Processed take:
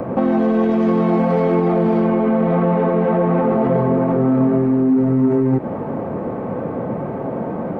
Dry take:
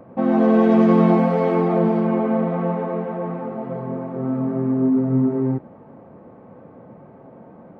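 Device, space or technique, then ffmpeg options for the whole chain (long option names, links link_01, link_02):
mastering chain: -filter_complex "[0:a]equalizer=frequency=400:width_type=o:width=0.77:gain=2,acrossover=split=250|1800[link_01][link_02][link_03];[link_01]acompressor=threshold=-30dB:ratio=4[link_04];[link_02]acompressor=threshold=-28dB:ratio=4[link_05];[link_03]acompressor=threshold=-51dB:ratio=4[link_06];[link_04][link_05][link_06]amix=inputs=3:normalize=0,acompressor=threshold=-27dB:ratio=6,asoftclip=type=tanh:threshold=-21dB,alimiter=level_in=27.5dB:limit=-1dB:release=50:level=0:latency=1,volume=-8.5dB"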